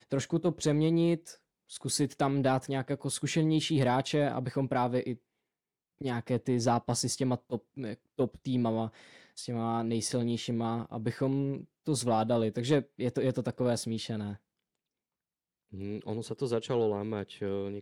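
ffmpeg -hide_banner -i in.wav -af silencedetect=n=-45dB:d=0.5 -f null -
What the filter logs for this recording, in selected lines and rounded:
silence_start: 5.15
silence_end: 6.01 | silence_duration: 0.85
silence_start: 14.36
silence_end: 15.73 | silence_duration: 1.37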